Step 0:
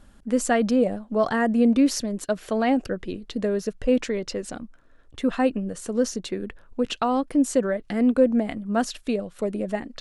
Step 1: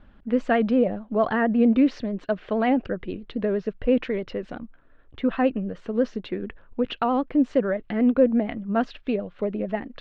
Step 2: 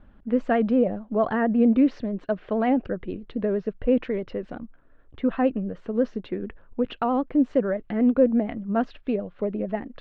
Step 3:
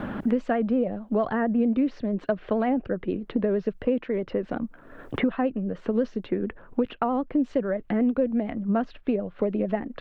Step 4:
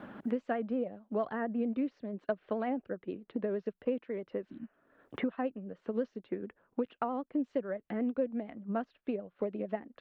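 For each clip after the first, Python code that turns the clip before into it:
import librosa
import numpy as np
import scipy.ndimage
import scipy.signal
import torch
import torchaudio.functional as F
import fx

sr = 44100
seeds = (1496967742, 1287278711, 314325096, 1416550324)

y1 = fx.vibrato(x, sr, rate_hz=11.0, depth_cents=56.0)
y1 = scipy.signal.sosfilt(scipy.signal.butter(4, 3200.0, 'lowpass', fs=sr, output='sos'), y1)
y2 = fx.high_shelf(y1, sr, hz=2100.0, db=-9.0)
y3 = fx.band_squash(y2, sr, depth_pct=100)
y3 = y3 * 10.0 ** (-2.5 / 20.0)
y4 = fx.spec_repair(y3, sr, seeds[0], start_s=4.51, length_s=0.28, low_hz=370.0, high_hz=3100.0, source='both')
y4 = fx.highpass(y4, sr, hz=220.0, slope=6)
y4 = fx.upward_expand(y4, sr, threshold_db=-44.0, expansion=1.5)
y4 = y4 * 10.0 ** (-6.0 / 20.0)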